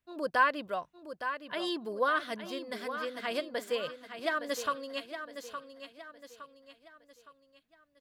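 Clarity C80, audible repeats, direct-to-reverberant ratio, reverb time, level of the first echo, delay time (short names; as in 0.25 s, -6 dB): none, 4, none, none, -9.5 dB, 0.864 s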